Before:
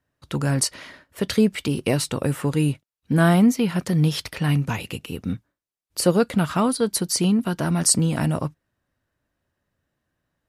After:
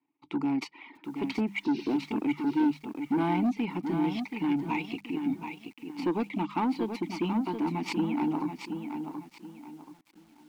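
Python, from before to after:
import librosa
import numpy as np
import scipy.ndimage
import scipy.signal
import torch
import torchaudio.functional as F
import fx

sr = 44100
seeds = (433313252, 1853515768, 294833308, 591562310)

p1 = scipy.signal.medfilt(x, 5)
p2 = scipy.signal.sosfilt(scipy.signal.butter(2, 140.0, 'highpass', fs=sr, output='sos'), p1)
p3 = fx.spec_repair(p2, sr, seeds[0], start_s=1.67, length_s=0.28, low_hz=1500.0, high_hz=6400.0, source='after')
p4 = fx.vowel_filter(p3, sr, vowel='u')
p5 = fx.level_steps(p4, sr, step_db=23)
p6 = p4 + (p5 * librosa.db_to_amplitude(-1.0))
p7 = fx.dereverb_blind(p6, sr, rt60_s=0.56)
p8 = fx.hum_notches(p7, sr, base_hz=50, count=4)
p9 = 10.0 ** (-28.0 / 20.0) * np.tanh(p8 / 10.0 ** (-28.0 / 20.0))
p10 = fx.low_shelf(p9, sr, hz=380.0, db=-4.5)
p11 = fx.echo_crushed(p10, sr, ms=728, feedback_pct=35, bits=11, wet_db=-7.0)
y = p11 * librosa.db_to_amplitude(9.0)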